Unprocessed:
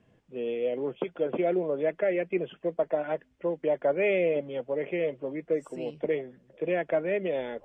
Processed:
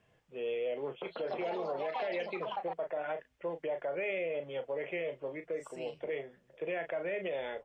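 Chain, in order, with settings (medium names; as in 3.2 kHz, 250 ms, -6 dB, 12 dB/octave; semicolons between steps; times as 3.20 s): peaking EQ 260 Hz -9 dB 1.1 oct; doubling 36 ms -10 dB; 0.84–3.00 s: ever faster or slower copies 179 ms, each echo +4 st, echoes 3, each echo -6 dB; peak limiter -26 dBFS, peak gain reduction 9.5 dB; bass shelf 390 Hz -6 dB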